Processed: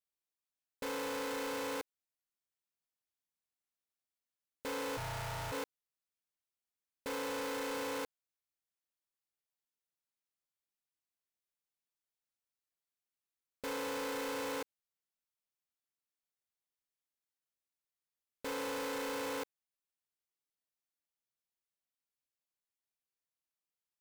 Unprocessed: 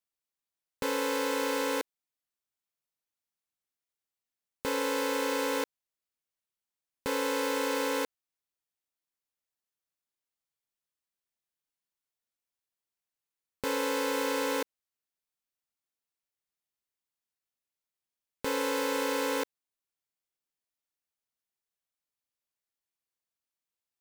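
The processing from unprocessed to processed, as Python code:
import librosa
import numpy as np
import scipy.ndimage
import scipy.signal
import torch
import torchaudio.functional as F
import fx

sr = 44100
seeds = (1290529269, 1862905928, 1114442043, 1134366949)

y = fx.ring_mod(x, sr, carrier_hz=400.0, at=(4.96, 5.51), fade=0.02)
y = np.clip(y, -10.0 ** (-30.0 / 20.0), 10.0 ** (-30.0 / 20.0))
y = F.gain(torch.from_numpy(y), -5.5).numpy()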